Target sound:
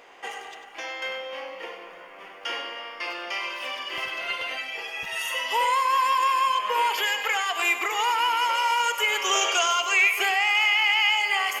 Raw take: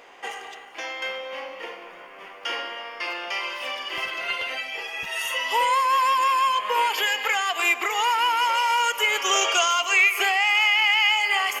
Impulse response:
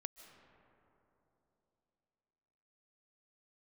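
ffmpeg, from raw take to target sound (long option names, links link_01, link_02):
-filter_complex "[0:a]asplit=2[link_01][link_02];[1:a]atrim=start_sample=2205,adelay=98[link_03];[link_02][link_03]afir=irnorm=-1:irlink=0,volume=-6dB[link_04];[link_01][link_04]amix=inputs=2:normalize=0,volume=-2dB"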